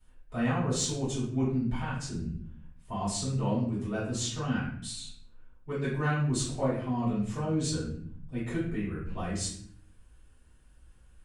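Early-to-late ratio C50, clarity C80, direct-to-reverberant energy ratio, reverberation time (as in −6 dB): 3.0 dB, 7.0 dB, −11.0 dB, 0.60 s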